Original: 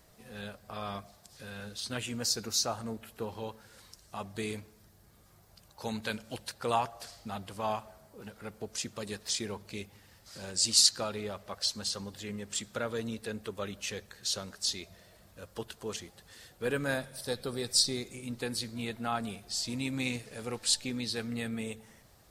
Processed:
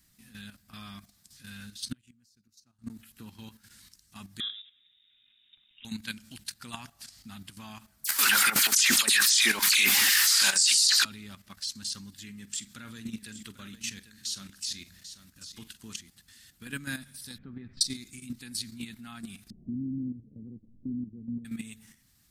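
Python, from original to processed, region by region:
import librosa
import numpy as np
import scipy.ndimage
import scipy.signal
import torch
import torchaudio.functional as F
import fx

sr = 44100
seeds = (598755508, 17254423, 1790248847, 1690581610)

y = fx.chain(x, sr, fx.low_shelf(hz=340.0, db=10.0),
    fx.gate_flip(shuts_db=-23.0, range_db=-33), at=(1.91, 2.9))
y = fx.chain(y, sr, fx.env_lowpass_down(base_hz=1400.0, full_db=-37.0),
    fx.freq_invert(carrier_hz=3700),
    fx.hum_notches(base_hz=60, count=7), at=(4.4, 5.85))
y = fx.chain(y, sr, fx.filter_lfo_highpass(shape='saw_down', hz=2.0, low_hz=610.0, high_hz=1700.0, q=1.3),
    fx.dispersion(late='lows', ms=53.0, hz=2700.0),
    fx.env_flatten(amount_pct=100), at=(8.04, 11.05))
y = fx.chain(y, sr, fx.doubler(ms=45.0, db=-13),
    fx.echo_single(ms=793, db=-11.0), at=(12.24, 16.0))
y = fx.chain(y, sr, fx.lowpass(hz=2200.0, slope=24),
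    fx.tilt_shelf(db=4.0, hz=820.0), at=(17.38, 17.81))
y = fx.chain(y, sr, fx.steep_lowpass(hz=510.0, slope=36),
    fx.band_squash(depth_pct=70), at=(19.5, 21.45))
y = fx.curve_eq(y, sr, hz=(120.0, 260.0, 490.0, 1700.0, 10000.0), db=(0, 4, -21, 1, 7))
y = fx.level_steps(y, sr, step_db=11)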